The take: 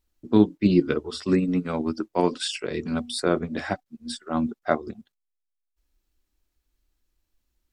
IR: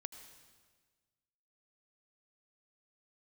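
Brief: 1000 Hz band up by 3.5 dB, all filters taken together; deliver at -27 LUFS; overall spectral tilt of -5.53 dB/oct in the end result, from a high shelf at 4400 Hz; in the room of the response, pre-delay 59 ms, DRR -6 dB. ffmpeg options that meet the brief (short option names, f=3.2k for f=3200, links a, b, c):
-filter_complex "[0:a]equalizer=f=1k:t=o:g=5,highshelf=f=4.4k:g=-5.5,asplit=2[a][b];[1:a]atrim=start_sample=2205,adelay=59[c];[b][c]afir=irnorm=-1:irlink=0,volume=9.5dB[d];[a][d]amix=inputs=2:normalize=0,volume=-9dB"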